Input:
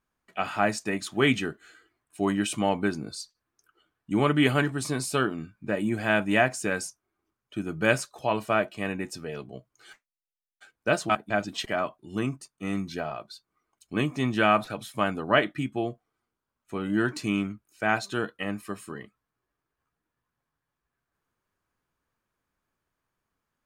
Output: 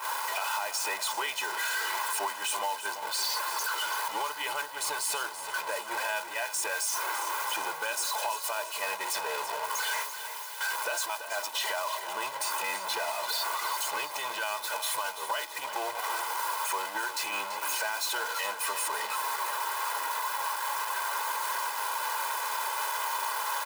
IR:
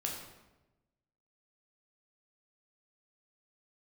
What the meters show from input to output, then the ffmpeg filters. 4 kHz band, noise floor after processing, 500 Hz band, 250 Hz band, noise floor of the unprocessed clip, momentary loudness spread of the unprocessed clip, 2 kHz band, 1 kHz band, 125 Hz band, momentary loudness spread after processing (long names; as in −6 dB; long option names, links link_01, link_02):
+4.0 dB, −40 dBFS, −9.5 dB, −26.0 dB, below −85 dBFS, 15 LU, −1.0 dB, +2.0 dB, below −30 dB, 3 LU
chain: -filter_complex "[0:a]aeval=exprs='val(0)+0.5*0.0501*sgn(val(0))':channel_layout=same,highpass=frequency=860:width_type=q:width=4.4,equalizer=frequency=6500:width_type=o:width=0.69:gain=-3,aecho=1:1:2:0.76,acrossover=split=4100[link_01][link_02];[link_01]acompressor=threshold=-30dB:ratio=6[link_03];[link_03][link_02]amix=inputs=2:normalize=0,alimiter=limit=-22.5dB:level=0:latency=1:release=30,acontrast=47,agate=range=-7dB:threshold=-28dB:ratio=16:detection=peak,asplit=2[link_04][link_05];[link_05]aecho=0:1:336|672|1008|1344|1680|2016:0.282|0.152|0.0822|0.0444|0.024|0.0129[link_06];[link_04][link_06]amix=inputs=2:normalize=0,volume=-5.5dB"